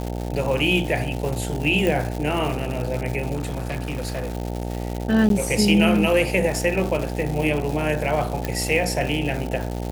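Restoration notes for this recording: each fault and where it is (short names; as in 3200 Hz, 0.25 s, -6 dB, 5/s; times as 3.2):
buzz 60 Hz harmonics 15 -28 dBFS
crackle 310/s -27 dBFS
1.87 pop
3.34–4.35 clipped -22.5 dBFS
5.29–5.3 gap 12 ms
8.45 pop -10 dBFS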